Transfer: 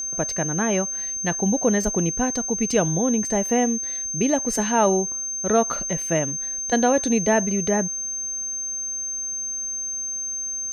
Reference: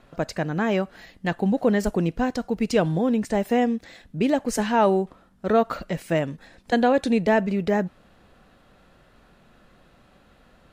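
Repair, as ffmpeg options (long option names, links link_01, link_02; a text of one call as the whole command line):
ffmpeg -i in.wav -af "bandreject=frequency=6300:width=30" out.wav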